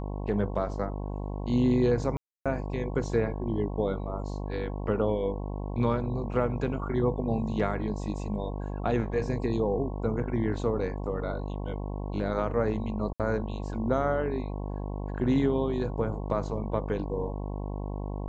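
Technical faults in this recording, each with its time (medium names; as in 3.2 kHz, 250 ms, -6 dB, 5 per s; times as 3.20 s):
buzz 50 Hz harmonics 22 -34 dBFS
2.17–2.46 s: dropout 286 ms
13.13–13.20 s: dropout 67 ms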